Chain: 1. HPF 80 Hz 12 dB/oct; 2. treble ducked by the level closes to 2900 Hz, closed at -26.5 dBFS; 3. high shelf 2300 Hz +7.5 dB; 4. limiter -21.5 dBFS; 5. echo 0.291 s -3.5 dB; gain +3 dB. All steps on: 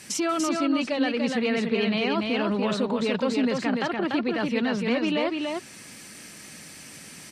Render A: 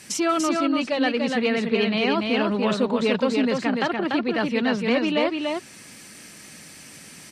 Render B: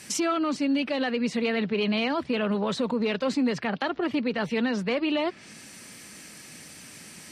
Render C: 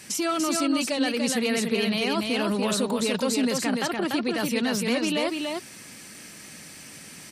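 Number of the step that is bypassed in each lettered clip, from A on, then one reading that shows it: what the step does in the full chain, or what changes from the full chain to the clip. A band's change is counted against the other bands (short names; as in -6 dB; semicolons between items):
4, crest factor change +1.5 dB; 5, loudness change -1.5 LU; 2, 8 kHz band +7.0 dB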